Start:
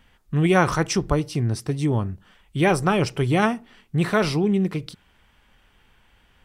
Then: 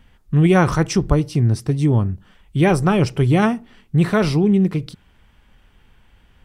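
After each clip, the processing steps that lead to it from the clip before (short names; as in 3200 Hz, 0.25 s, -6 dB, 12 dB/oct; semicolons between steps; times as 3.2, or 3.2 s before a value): low shelf 330 Hz +8 dB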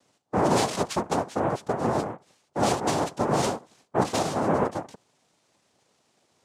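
noise vocoder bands 2; gain -9 dB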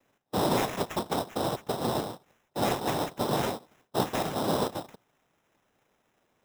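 sample-rate reducer 4500 Hz, jitter 0%; gain -4 dB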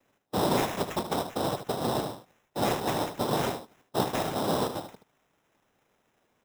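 echo 76 ms -10 dB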